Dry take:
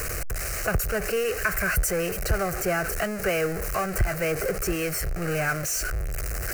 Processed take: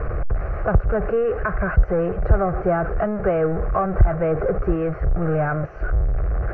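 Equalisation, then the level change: synth low-pass 1000 Hz, resonance Q 1.7; air absorption 280 m; low shelf 200 Hz +6 dB; +4.0 dB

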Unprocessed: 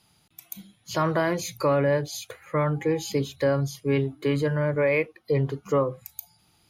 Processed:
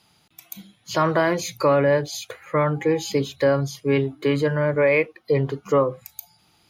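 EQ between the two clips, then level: low shelf 150 Hz -7.5 dB; bell 11000 Hz -6.5 dB 0.94 oct; +5.0 dB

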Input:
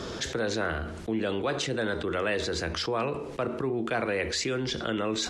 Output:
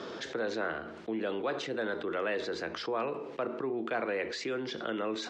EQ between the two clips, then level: BPF 250–3800 Hz; dynamic EQ 2900 Hz, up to -3 dB, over -46 dBFS, Q 1.1; -3.0 dB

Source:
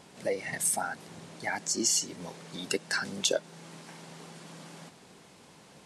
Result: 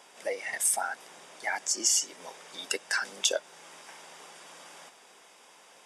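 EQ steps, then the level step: HPF 600 Hz 12 dB/oct; Butterworth band-stop 4200 Hz, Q 7.7; +2.0 dB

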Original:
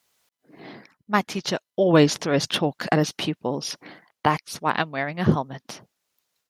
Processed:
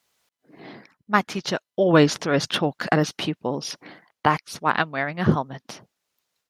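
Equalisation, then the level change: dynamic EQ 1400 Hz, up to +5 dB, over -38 dBFS, Q 2.2; high shelf 8200 Hz -4.5 dB; 0.0 dB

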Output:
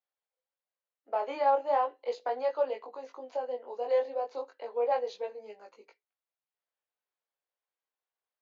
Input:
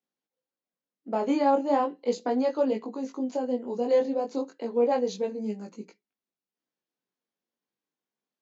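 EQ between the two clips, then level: HPF 540 Hz 24 dB/oct; air absorption 210 m; 0.0 dB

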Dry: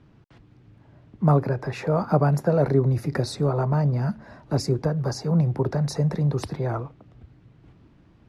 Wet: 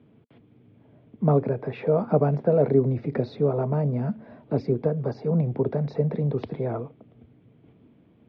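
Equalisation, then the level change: air absorption 110 m; speaker cabinet 110–4400 Hz, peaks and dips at 240 Hz +8 dB, 450 Hz +9 dB, 650 Hz +5 dB, 2300 Hz +8 dB, 3300 Hz +10 dB; tilt shelf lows +4 dB, about 930 Hz; -6.5 dB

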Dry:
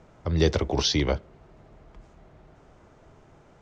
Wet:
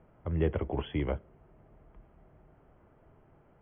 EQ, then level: brick-wall FIR low-pass 3400 Hz; air absorption 440 m; -6.0 dB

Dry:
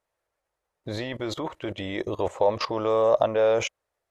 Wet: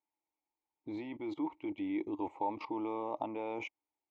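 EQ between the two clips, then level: vowel filter u; low shelf 71 Hz +9.5 dB; bell 590 Hz +10.5 dB 0.28 oct; +1.0 dB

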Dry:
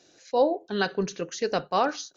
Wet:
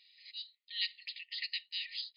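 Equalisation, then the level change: brick-wall FIR band-pass 1800–5000 Hz; +1.0 dB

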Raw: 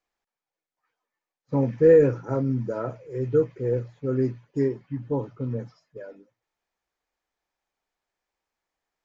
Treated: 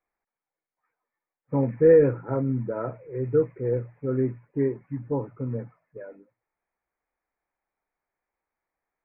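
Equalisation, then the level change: elliptic low-pass 2300 Hz, stop band 40 dB; 0.0 dB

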